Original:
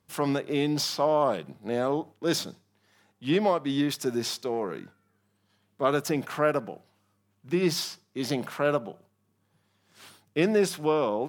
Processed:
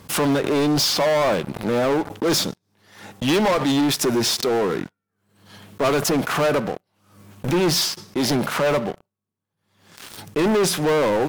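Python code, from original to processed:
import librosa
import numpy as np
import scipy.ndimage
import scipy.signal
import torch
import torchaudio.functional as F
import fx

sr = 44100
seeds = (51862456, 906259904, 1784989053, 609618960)

y = fx.peak_eq(x, sr, hz=4700.0, db=6.5, octaves=2.3, at=(3.28, 3.72))
y = fx.leveller(y, sr, passes=5)
y = fx.pre_swell(y, sr, db_per_s=86.0)
y = y * 10.0 ** (-4.5 / 20.0)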